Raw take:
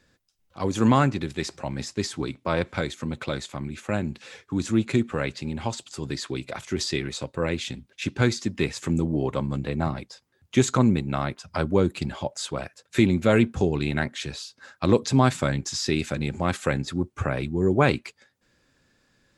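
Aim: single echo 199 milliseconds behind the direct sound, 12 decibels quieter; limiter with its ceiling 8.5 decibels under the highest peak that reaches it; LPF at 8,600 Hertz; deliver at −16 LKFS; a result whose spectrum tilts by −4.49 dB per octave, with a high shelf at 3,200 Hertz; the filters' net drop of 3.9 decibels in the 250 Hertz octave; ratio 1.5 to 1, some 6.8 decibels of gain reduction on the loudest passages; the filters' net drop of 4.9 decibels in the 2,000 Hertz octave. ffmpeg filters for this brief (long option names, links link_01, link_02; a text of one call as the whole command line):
ffmpeg -i in.wav -af "lowpass=8600,equalizer=frequency=250:width_type=o:gain=-5,equalizer=frequency=2000:width_type=o:gain=-8.5,highshelf=frequency=3200:gain=5.5,acompressor=threshold=-35dB:ratio=1.5,alimiter=limit=-22.5dB:level=0:latency=1,aecho=1:1:199:0.251,volume=19dB" out.wav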